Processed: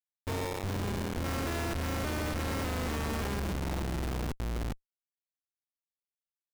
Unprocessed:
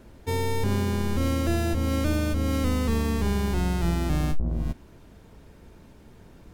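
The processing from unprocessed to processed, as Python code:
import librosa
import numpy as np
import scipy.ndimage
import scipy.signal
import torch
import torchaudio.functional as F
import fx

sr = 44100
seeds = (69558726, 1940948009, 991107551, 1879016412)

y = fx.peak_eq(x, sr, hz=1900.0, db=11.5, octaves=2.4, at=(1.24, 3.4))
y = fx.schmitt(y, sr, flips_db=-36.5)
y = F.gain(torch.from_numpy(y), -7.5).numpy()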